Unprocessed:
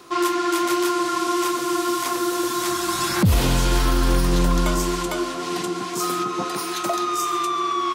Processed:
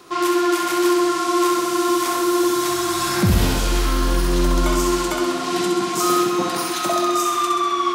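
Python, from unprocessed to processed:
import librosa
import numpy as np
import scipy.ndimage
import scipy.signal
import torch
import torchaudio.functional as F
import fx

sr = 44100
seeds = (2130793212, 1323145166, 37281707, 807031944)

y = fx.rider(x, sr, range_db=10, speed_s=2.0)
y = fx.room_flutter(y, sr, wall_m=11.2, rt60_s=0.93)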